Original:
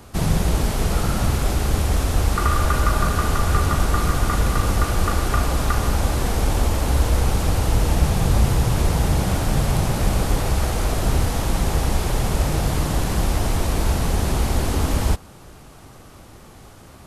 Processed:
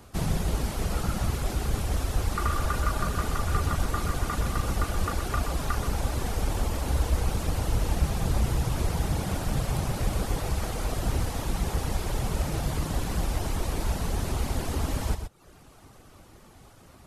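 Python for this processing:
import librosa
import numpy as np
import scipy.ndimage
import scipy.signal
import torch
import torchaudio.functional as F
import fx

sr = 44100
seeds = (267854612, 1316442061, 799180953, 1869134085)

p1 = fx.dereverb_blind(x, sr, rt60_s=0.71)
p2 = p1 + fx.echo_single(p1, sr, ms=125, db=-9.0, dry=0)
y = p2 * 10.0 ** (-6.5 / 20.0)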